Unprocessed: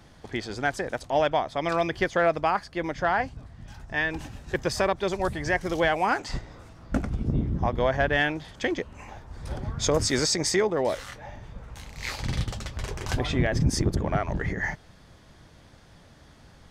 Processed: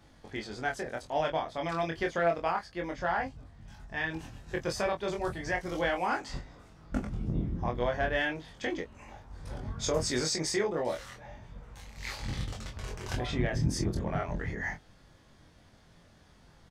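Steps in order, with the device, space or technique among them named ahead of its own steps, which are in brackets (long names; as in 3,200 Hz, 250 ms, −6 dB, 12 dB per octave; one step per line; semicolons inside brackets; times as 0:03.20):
double-tracked vocal (double-tracking delay 19 ms −10 dB; chorus effect 0.33 Hz, depth 2.3 ms)
level −3.5 dB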